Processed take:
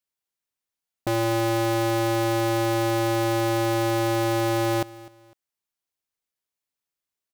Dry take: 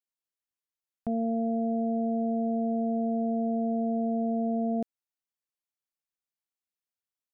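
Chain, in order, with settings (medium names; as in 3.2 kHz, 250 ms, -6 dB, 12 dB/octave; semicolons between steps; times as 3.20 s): cycle switcher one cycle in 2, inverted; feedback delay 252 ms, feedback 31%, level -20 dB; trim +5 dB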